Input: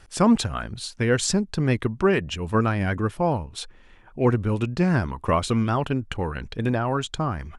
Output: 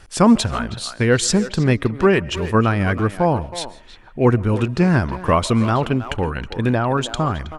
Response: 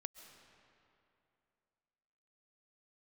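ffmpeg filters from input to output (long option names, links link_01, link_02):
-filter_complex "[0:a]asplit=2[link_01][link_02];[link_02]adelay=320,highpass=300,lowpass=3400,asoftclip=type=hard:threshold=-18dB,volume=-11dB[link_03];[link_01][link_03]amix=inputs=2:normalize=0,asplit=2[link_04][link_05];[1:a]atrim=start_sample=2205,afade=type=out:start_time=0.22:duration=0.01,atrim=end_sample=10143[link_06];[link_05][link_06]afir=irnorm=-1:irlink=0,volume=3dB[link_07];[link_04][link_07]amix=inputs=2:normalize=0"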